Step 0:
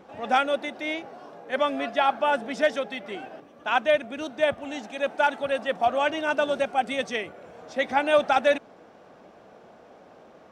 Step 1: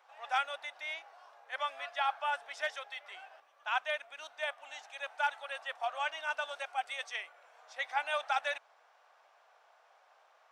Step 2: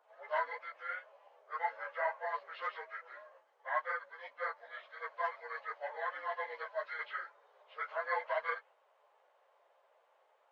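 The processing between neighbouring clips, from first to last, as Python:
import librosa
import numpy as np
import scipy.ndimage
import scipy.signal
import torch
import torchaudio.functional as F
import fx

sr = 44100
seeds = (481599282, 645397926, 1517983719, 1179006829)

y1 = scipy.signal.sosfilt(scipy.signal.butter(4, 810.0, 'highpass', fs=sr, output='sos'), x)
y1 = y1 * 10.0 ** (-7.5 / 20.0)
y2 = fx.partial_stretch(y1, sr, pct=80)
y2 = fx.dynamic_eq(y2, sr, hz=2000.0, q=0.92, threshold_db=-52.0, ratio=4.0, max_db=5)
y2 = fx.ensemble(y2, sr)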